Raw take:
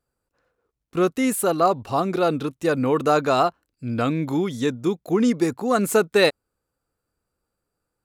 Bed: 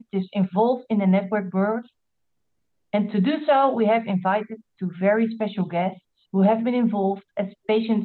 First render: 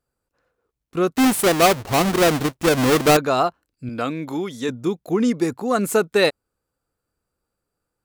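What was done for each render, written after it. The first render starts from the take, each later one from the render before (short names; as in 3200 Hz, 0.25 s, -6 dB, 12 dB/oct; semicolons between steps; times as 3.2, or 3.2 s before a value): 1.17–3.17 half-waves squared off; 3.89–4.69 HPF 310 Hz 6 dB/oct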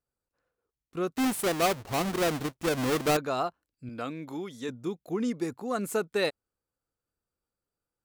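gain -10.5 dB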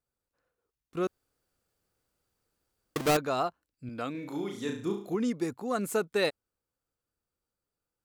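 1.07–2.96 room tone; 4.11–5.15 flutter echo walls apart 6 m, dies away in 0.46 s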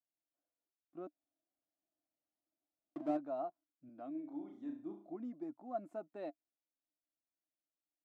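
flange 1.8 Hz, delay 2 ms, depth 1.2 ms, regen +70%; double band-pass 440 Hz, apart 1.1 oct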